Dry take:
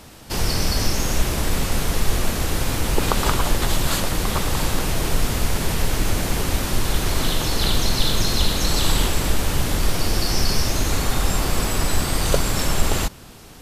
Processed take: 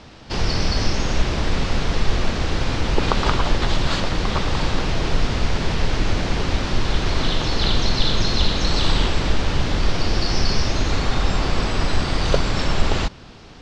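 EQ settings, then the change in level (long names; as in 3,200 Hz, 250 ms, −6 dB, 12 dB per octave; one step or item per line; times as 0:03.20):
low-pass filter 5,300 Hz 24 dB per octave
+1.0 dB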